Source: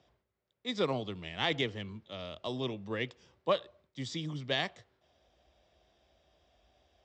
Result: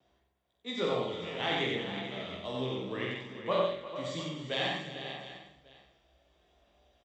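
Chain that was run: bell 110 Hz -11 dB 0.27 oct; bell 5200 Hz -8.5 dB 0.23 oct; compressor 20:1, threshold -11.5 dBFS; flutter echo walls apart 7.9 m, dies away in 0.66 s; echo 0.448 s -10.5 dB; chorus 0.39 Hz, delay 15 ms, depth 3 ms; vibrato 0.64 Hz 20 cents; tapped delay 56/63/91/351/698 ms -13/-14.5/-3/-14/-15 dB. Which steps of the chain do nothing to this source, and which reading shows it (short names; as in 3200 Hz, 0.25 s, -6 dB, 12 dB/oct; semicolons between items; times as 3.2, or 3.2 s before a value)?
compressor, threshold -11.5 dBFS: input peak -16.0 dBFS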